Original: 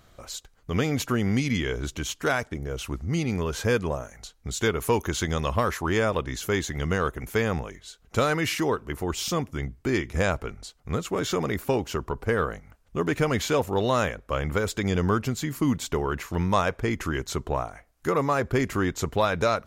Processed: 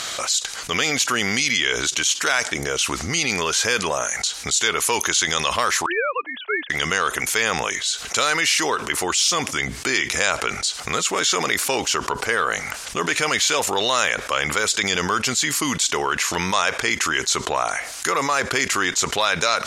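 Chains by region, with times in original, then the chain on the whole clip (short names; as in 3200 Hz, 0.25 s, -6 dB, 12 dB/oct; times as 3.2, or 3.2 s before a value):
5.86–6.7 sine-wave speech + upward expander 2.5:1, over -43 dBFS
whole clip: weighting filter ITU-R 468; fast leveller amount 70%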